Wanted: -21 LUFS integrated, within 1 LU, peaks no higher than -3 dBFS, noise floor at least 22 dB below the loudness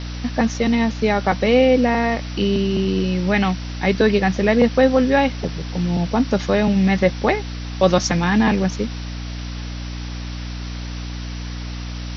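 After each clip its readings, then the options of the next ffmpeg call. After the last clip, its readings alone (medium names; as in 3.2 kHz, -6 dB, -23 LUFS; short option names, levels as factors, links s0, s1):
hum 60 Hz; highest harmonic 300 Hz; hum level -27 dBFS; noise floor -29 dBFS; noise floor target -41 dBFS; loudness -18.5 LUFS; peak level -1.0 dBFS; loudness target -21.0 LUFS
-> -af "bandreject=f=60:t=h:w=4,bandreject=f=120:t=h:w=4,bandreject=f=180:t=h:w=4,bandreject=f=240:t=h:w=4,bandreject=f=300:t=h:w=4"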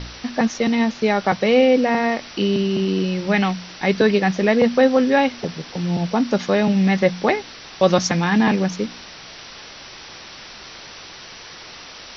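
hum not found; noise floor -39 dBFS; noise floor target -41 dBFS
-> -af "afftdn=nr=6:nf=-39"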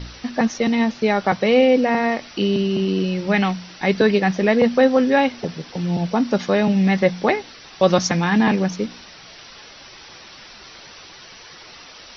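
noise floor -43 dBFS; loudness -19.0 LUFS; peak level -2.0 dBFS; loudness target -21.0 LUFS
-> -af "volume=0.794"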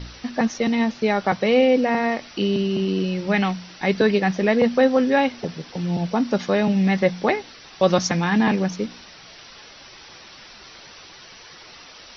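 loudness -21.0 LUFS; peak level -4.0 dBFS; noise floor -45 dBFS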